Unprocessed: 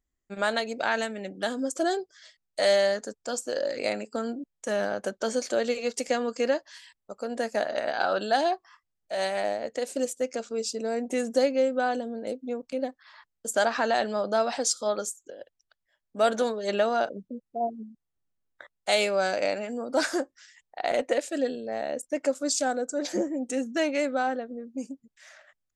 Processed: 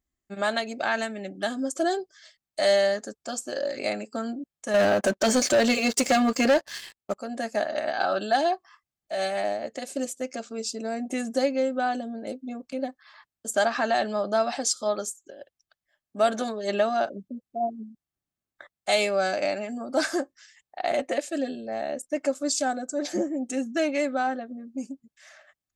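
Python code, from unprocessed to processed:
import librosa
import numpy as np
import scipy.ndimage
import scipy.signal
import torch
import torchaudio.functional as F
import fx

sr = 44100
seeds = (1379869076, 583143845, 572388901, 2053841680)

y = fx.notch_comb(x, sr, f0_hz=480.0)
y = fx.leveller(y, sr, passes=3, at=(4.74, 7.18))
y = y * 10.0 ** (1.5 / 20.0)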